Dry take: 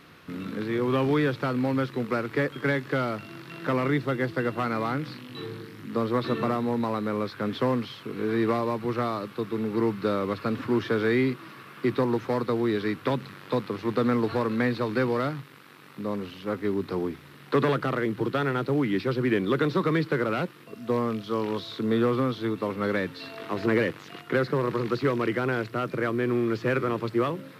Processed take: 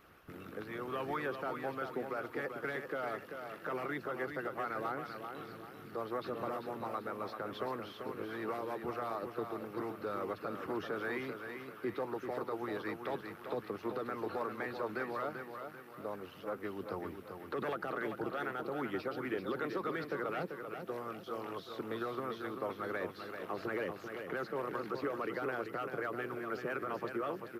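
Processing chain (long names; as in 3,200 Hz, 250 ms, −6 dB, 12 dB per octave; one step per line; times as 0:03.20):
notch filter 1,000 Hz, Q 7.3
harmonic and percussive parts rebalanced harmonic −15 dB
octave-band graphic EQ 125/250/500/2,000/4,000/8,000 Hz −8/−9/−3/−7/−12/−7 dB
brickwall limiter −31 dBFS, peak gain reduction 11.5 dB
on a send: repeating echo 389 ms, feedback 41%, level −7 dB
on the sum: level +2.5 dB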